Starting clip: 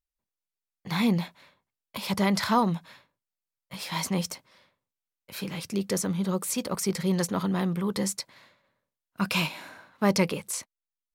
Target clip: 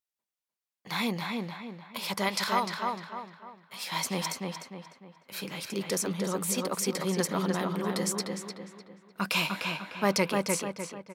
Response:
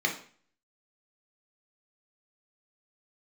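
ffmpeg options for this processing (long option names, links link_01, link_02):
-filter_complex "[0:a]asetnsamples=nb_out_samples=441:pad=0,asendcmd='2.29 highpass f 1200;3.87 highpass f 340',highpass=frequency=540:poles=1,asplit=2[link_01][link_02];[link_02]adelay=301,lowpass=frequency=3000:poles=1,volume=-3dB,asplit=2[link_03][link_04];[link_04]adelay=301,lowpass=frequency=3000:poles=1,volume=0.42,asplit=2[link_05][link_06];[link_06]adelay=301,lowpass=frequency=3000:poles=1,volume=0.42,asplit=2[link_07][link_08];[link_08]adelay=301,lowpass=frequency=3000:poles=1,volume=0.42,asplit=2[link_09][link_10];[link_10]adelay=301,lowpass=frequency=3000:poles=1,volume=0.42[link_11];[link_01][link_03][link_05][link_07][link_09][link_11]amix=inputs=6:normalize=0"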